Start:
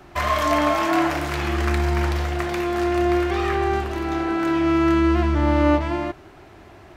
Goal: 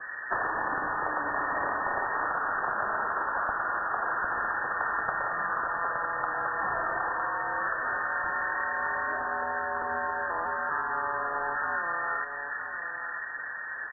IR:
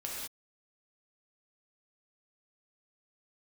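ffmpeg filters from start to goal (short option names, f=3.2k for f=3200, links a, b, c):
-filter_complex "[0:a]highshelf=f=2.5k:g=-5,afftfilt=real='re*lt(hypot(re,im),0.126)':imag='im*lt(hypot(re,im),0.126)':win_size=1024:overlap=0.75,asplit=2[a][b];[b]adelay=198.3,volume=-24dB,highshelf=f=4k:g=-4.46[c];[a][c]amix=inputs=2:normalize=0,adynamicequalizer=threshold=0.0126:dfrequency=990:dqfactor=2.4:tfrequency=990:tqfactor=2.4:attack=5:release=100:ratio=0.375:range=4:mode=boostabove:tftype=bell,lowpass=f=3.2k:t=q:w=0.5098,lowpass=f=3.2k:t=q:w=0.6013,lowpass=f=3.2k:t=q:w=0.9,lowpass=f=3.2k:t=q:w=2.563,afreqshift=-3800,acompressor=threshold=-35dB:ratio=6,asplit=2[d][e];[e]aecho=0:1:479:0.335[f];[d][f]amix=inputs=2:normalize=0,asetrate=22050,aresample=44100,acrossover=split=130[g][h];[g]acontrast=49[i];[i][h]amix=inputs=2:normalize=0,volume=8dB"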